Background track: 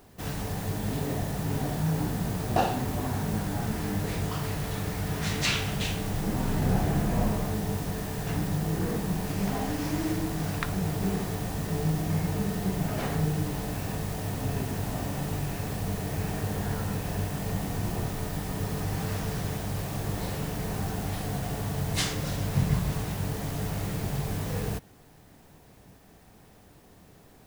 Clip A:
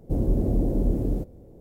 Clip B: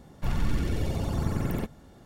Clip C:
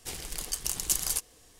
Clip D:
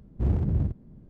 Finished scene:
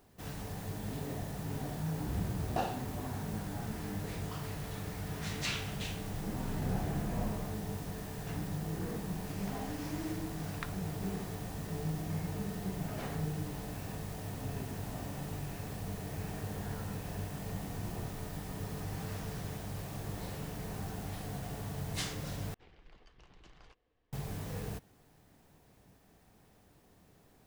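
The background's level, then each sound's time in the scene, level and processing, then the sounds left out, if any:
background track -9 dB
1.88 s: add D -4.5 dB + tilt shelf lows -9.5 dB, about 1.4 kHz
22.54 s: replace with C -16.5 dB + Bessel low-pass 2.1 kHz, order 4
not used: A, B

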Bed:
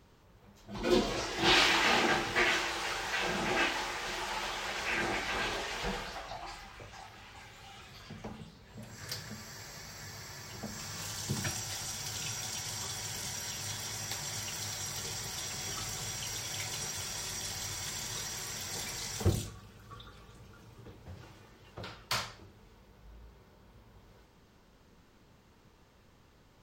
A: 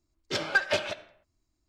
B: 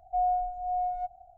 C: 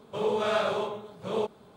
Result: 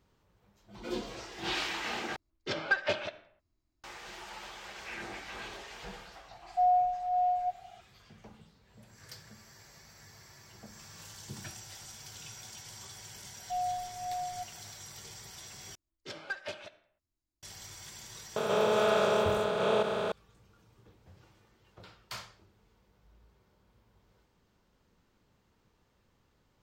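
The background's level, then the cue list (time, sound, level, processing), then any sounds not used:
bed -9 dB
2.16 s: replace with A -3 dB + distance through air 100 m
6.44 s: add B -13 dB + high-order bell 650 Hz +14.5 dB
13.37 s: add B -6.5 dB + tilt shelf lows -7.5 dB, about 770 Hz
15.75 s: replace with A -13.5 dB
18.36 s: add C -5 dB + spectral levelling over time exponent 0.2

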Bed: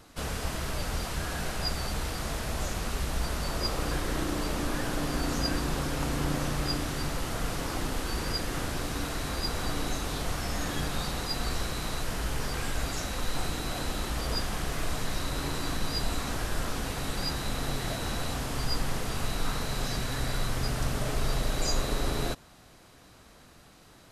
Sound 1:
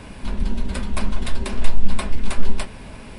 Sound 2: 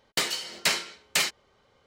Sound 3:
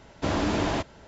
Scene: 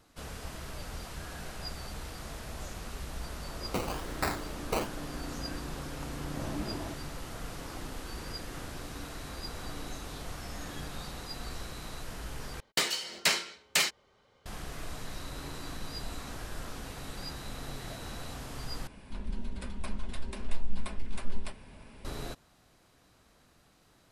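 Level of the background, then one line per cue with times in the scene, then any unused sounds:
bed -9 dB
3.57 s: add 2 -6.5 dB + decimation with a swept rate 20×, swing 60% 1.1 Hz
6.13 s: add 3 -13.5 dB + spectral contrast expander 1.5:1
12.60 s: replace with 2 -2 dB
18.87 s: replace with 1 -13.5 dB

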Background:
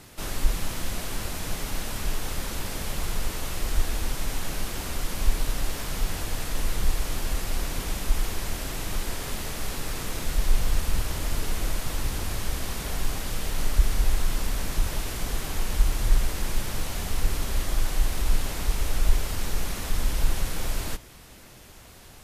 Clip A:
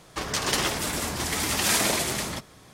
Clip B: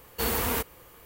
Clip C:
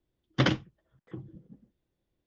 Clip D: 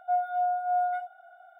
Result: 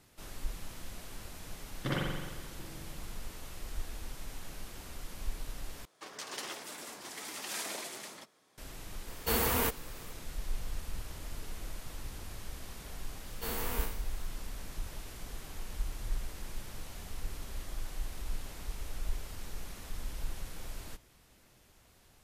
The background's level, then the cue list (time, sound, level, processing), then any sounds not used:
background -14.5 dB
1.46 s: add C -12.5 dB + spring tank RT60 1.3 s, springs 43 ms, DRR -5 dB
5.85 s: replace with A -15.5 dB + high-pass 290 Hz
9.08 s: add B -2 dB
13.23 s: add B -11.5 dB + spectral sustain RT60 0.51 s
not used: D

